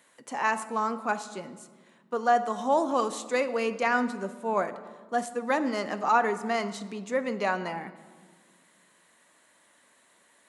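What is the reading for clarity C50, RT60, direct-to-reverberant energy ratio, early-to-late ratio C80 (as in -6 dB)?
13.0 dB, 1.6 s, 11.0 dB, 14.5 dB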